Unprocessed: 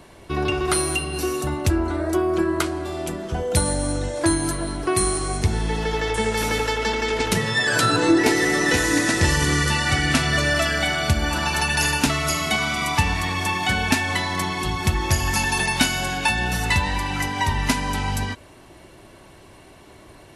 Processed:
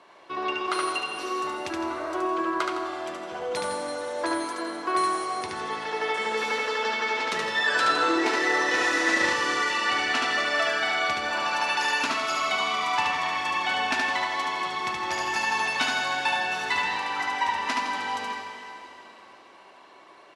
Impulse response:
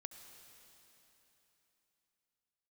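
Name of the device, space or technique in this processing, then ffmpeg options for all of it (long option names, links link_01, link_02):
station announcement: -filter_complex "[0:a]highpass=470,lowpass=4700,equalizer=frequency=1100:width_type=o:width=0.49:gain=6,aecho=1:1:72.89|160.3:0.708|0.282[link_01];[1:a]atrim=start_sample=2205[link_02];[link_01][link_02]afir=irnorm=-1:irlink=0,asettb=1/sr,asplit=3[link_03][link_04][link_05];[link_03]atrim=end=8.774[link_06];[link_04]atrim=start=8.77:end=9.33,asetpts=PTS-STARTPTS,afade=type=in:duration=0.004:curve=qsin,afade=type=out:start_time=0.556:duration=0.004:curve=qsin,asplit=2[link_07][link_08];[link_08]adelay=33,volume=-4dB[link_09];[link_07][link_09]amix=inputs=2:normalize=0,atrim=end_sample=24696[link_10];[link_05]atrim=start=9.326[link_11];[link_06][link_10]acrossfade=duration=0.004:curve1=hsin:curve2=qsin[link_12];[link_12][link_11]acrossfade=duration=0.004:curve1=qsin:curve2=hsin"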